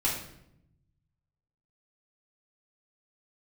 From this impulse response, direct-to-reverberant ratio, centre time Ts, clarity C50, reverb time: -7.0 dB, 39 ms, 4.0 dB, 0.75 s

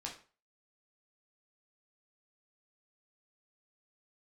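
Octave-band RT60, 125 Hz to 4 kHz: 0.35, 0.35, 0.35, 0.40, 0.35, 0.30 s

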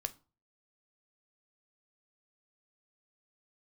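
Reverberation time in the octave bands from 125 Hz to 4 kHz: 0.50, 0.40, 0.35, 0.35, 0.25, 0.25 s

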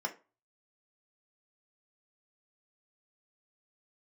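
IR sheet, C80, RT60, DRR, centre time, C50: 21.5 dB, 0.30 s, 2.0 dB, 8 ms, 15.5 dB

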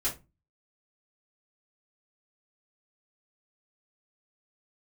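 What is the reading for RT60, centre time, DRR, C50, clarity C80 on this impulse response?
0.25 s, 19 ms, -8.5 dB, 11.0 dB, 20.0 dB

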